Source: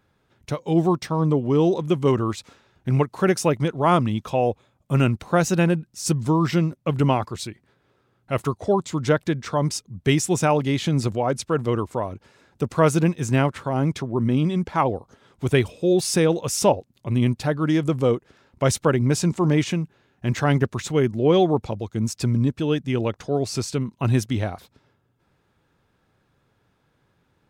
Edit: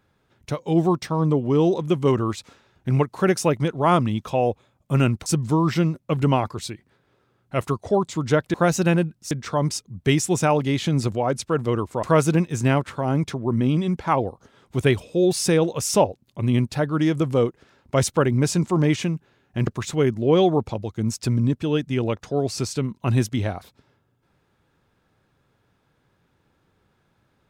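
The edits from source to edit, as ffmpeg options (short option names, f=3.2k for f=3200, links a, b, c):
-filter_complex "[0:a]asplit=6[a][b][c][d][e][f];[a]atrim=end=5.262[g];[b]atrim=start=6.028:end=9.312[h];[c]atrim=start=5.258:end=6.032[i];[d]atrim=start=9.308:end=12.032[j];[e]atrim=start=12.708:end=20.352[k];[f]atrim=start=20.638[l];[g][h]acrossfade=d=0.004:c1=hsin:c2=hsin[m];[m][i]acrossfade=d=0.004:c1=hsin:c2=hsin[n];[n][j]acrossfade=d=0.004:c1=hsin:c2=hsin[o];[o][k]acrossfade=d=0.004:c1=hsin:c2=hsin[p];[p][l]acrossfade=d=0.004:c1=hsin:c2=hsin"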